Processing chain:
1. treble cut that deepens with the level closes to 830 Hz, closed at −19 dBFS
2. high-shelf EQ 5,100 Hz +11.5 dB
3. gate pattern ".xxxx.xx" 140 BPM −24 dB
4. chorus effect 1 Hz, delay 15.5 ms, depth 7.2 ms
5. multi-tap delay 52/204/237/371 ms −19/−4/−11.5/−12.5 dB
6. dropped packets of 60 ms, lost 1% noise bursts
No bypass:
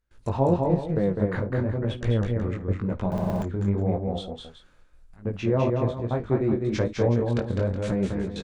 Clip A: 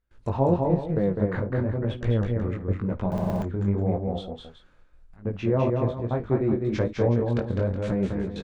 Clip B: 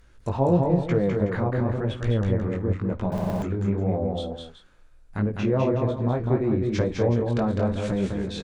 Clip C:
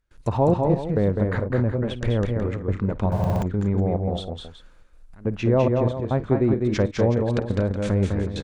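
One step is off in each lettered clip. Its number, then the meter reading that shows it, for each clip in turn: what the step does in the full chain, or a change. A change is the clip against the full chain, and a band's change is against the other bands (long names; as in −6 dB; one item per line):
2, 4 kHz band −3.5 dB
3, change in integrated loudness +1.0 LU
4, change in integrated loudness +3.0 LU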